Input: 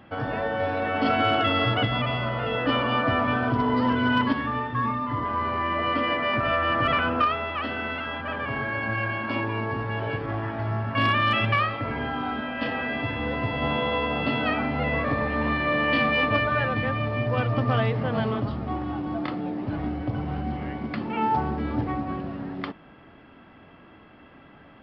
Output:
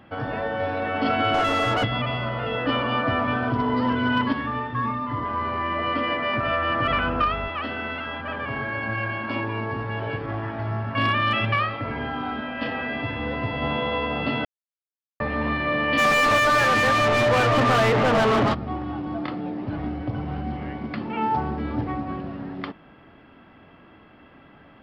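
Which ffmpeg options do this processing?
-filter_complex "[0:a]asettb=1/sr,asplit=3[a][b][c];[a]atrim=end=1.344[d];[b]atrim=start=1.34:end=1.84,asetpts=PTS-STARTPTS,afade=t=in:d=0.004:c=qsin,afade=t=out:st=0.496:d=0.004:c=qsin,asplit=2[e][f];[f]highpass=f=720:p=1,volume=20dB,asoftclip=type=tanh:threshold=-12dB[g];[e][g]amix=inputs=2:normalize=0,lowpass=f=1.1k:p=1,volume=-6dB[h];[c]atrim=start=1.836[i];[d][h]acrossfade=d=0.004:c1=hsin:c2=qsin[j];[j][i]acrossfade=d=0.004:c1=qsin:c2=hsin,asettb=1/sr,asplit=3[k][l][m];[k]atrim=end=6.884[n];[l]atrim=start=6.88:end=7.48,asetpts=PTS-STARTPTS,afade=t=in:d=0.004:c=qsin,afade=t=out:st=0.596:d=0.004:c=qsin,aeval=exprs='val(0)+0.0251*(sin(2*PI*50*n/s)+sin(2*PI*2*50*n/s)/2+sin(2*PI*3*50*n/s)/3+sin(2*PI*4*50*n/s)/4+sin(2*PI*5*50*n/s)/5)':c=same[o];[m]atrim=start=7.476[p];[n][o]acrossfade=d=0.004:c1=hsin:c2=qsin[q];[q][p]acrossfade=d=0.004:c1=qsin:c2=hsin,asplit=3[r][s][t];[r]afade=t=out:st=15.97:d=0.02[u];[s]asplit=2[v][w];[w]highpass=f=720:p=1,volume=31dB,asoftclip=type=tanh:threshold=-12dB[x];[v][x]amix=inputs=2:normalize=0,lowpass=f=2.3k:p=1,volume=-6dB,afade=t=in:st=15.97:d=0.02,afade=t=out:st=18.53:d=0.02[y];[t]afade=t=in:st=18.53:d=0.02[z];[u][y][z]amix=inputs=3:normalize=0,asplit=3[aa][ab][ac];[aa]atrim=end=14.45,asetpts=PTS-STARTPTS,afade=t=out:st=14.446:d=0.004:c=hsin[ad];[ab]atrim=start=14.45:end=15.2,asetpts=PTS-STARTPTS,volume=0[ae];[ac]atrim=start=15.2,asetpts=PTS-STARTPTS,afade=t=in:d=0.004:c=hsin[af];[ad][ae][af]concat=n=3:v=0:a=1"

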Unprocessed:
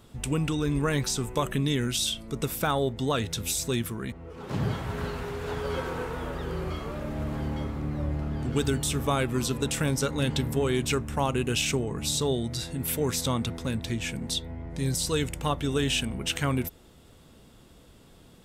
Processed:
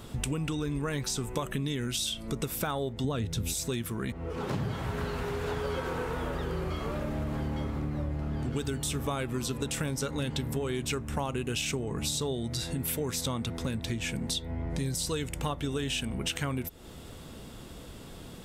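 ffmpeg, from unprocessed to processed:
-filter_complex "[0:a]asettb=1/sr,asplit=3[a][b][c];[a]atrim=end=3.044[d];[b]atrim=start=3.04:end=3.54,asetpts=PTS-STARTPTS,afade=t=in:d=0.004:c=qsin,afade=t=out:st=0.496:d=0.004:c=qsin,lowshelf=f=390:g=11[e];[c]atrim=start=3.536[f];[d][e]acrossfade=d=0.004:c1=hsin:c2=qsin[g];[g][f]acrossfade=d=0.004:c1=qsin:c2=hsin,acompressor=threshold=-39dB:ratio=5,volume=8.5dB"

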